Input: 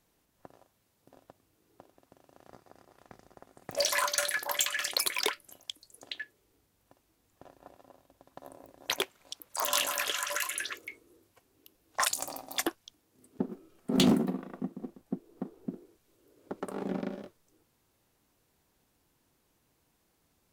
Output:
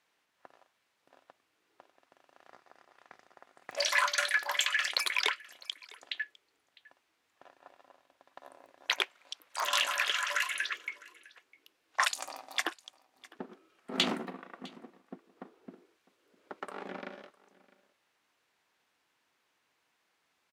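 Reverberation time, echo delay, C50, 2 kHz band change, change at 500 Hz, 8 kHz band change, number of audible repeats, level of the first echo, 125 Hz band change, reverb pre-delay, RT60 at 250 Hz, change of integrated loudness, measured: no reverb audible, 655 ms, no reverb audible, +4.0 dB, −6.0 dB, −6.0 dB, 1, −22.5 dB, −15.0 dB, no reverb audible, no reverb audible, 0.0 dB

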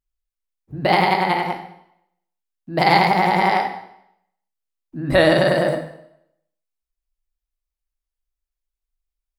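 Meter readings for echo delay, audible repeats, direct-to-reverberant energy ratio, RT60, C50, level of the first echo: no echo audible, no echo audible, 4.5 dB, 0.75 s, 8.5 dB, no echo audible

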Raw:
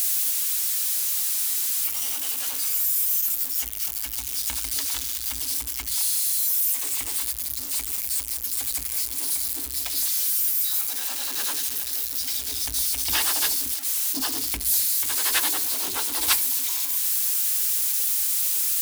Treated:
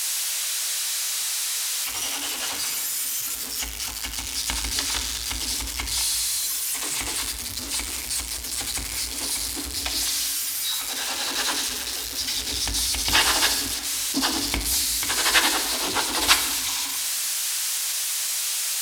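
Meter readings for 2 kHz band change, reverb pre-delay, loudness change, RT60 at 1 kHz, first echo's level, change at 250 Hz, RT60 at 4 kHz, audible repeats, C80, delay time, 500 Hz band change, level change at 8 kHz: +7.5 dB, 19 ms, −1.0 dB, 1.3 s, no echo audible, +8.0 dB, 1.2 s, no echo audible, 10.5 dB, no echo audible, +8.0 dB, +1.0 dB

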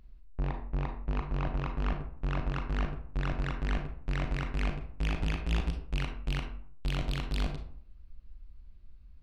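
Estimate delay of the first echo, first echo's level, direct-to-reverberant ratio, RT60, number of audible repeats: no echo audible, no echo audible, 4.5 dB, 0.55 s, no echo audible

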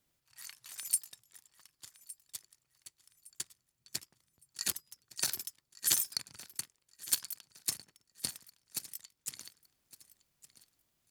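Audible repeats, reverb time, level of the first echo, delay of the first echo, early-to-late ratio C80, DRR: 2, no reverb audible, −18.0 dB, 1,162 ms, no reverb audible, no reverb audible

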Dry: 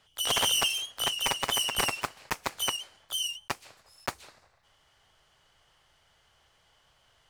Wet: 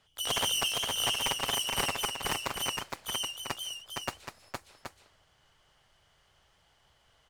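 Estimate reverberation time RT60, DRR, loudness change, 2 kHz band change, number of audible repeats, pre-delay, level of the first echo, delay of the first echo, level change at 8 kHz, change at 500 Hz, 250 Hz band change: no reverb audible, no reverb audible, −2.0 dB, −1.5 dB, 2, no reverb audible, −3.5 dB, 464 ms, −2.0 dB, −0.5 dB, +0.5 dB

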